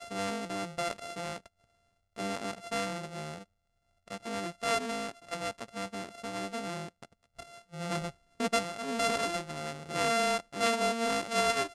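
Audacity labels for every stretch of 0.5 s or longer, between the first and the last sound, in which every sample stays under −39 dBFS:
1.460000	2.160000	silence
3.380000	4.080000	silence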